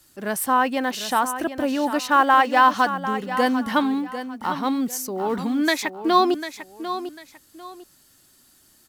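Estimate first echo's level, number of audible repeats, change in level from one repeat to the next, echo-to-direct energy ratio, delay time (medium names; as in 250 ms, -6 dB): -11.0 dB, 2, -11.5 dB, -10.5 dB, 747 ms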